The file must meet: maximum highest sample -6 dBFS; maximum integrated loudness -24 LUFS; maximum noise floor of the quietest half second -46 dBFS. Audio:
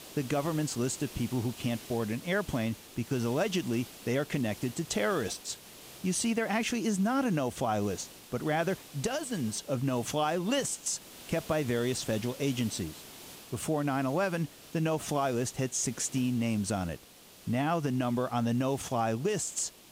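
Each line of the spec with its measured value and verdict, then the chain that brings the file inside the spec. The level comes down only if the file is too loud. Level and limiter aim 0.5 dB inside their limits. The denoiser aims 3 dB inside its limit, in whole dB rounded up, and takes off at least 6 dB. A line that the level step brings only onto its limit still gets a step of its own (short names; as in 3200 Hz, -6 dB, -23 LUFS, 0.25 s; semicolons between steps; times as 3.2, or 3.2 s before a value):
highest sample -15.5 dBFS: OK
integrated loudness -31.5 LUFS: OK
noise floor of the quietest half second -54 dBFS: OK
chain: none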